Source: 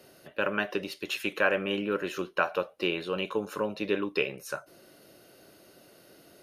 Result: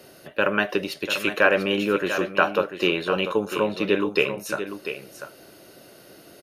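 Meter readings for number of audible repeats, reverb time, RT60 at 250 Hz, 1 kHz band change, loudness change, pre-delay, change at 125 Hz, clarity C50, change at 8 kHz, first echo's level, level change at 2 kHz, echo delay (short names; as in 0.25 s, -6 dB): 1, none, none, +7.5 dB, +7.0 dB, none, +7.5 dB, none, +7.5 dB, -10.0 dB, +7.5 dB, 0.693 s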